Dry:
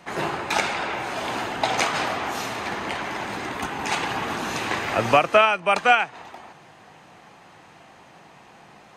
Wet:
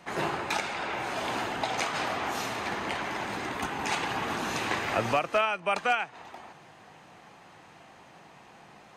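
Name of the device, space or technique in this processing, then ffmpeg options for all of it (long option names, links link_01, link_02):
clipper into limiter: -af "asoftclip=type=hard:threshold=-6.5dB,alimiter=limit=-12.5dB:level=0:latency=1:release=444,volume=-3.5dB"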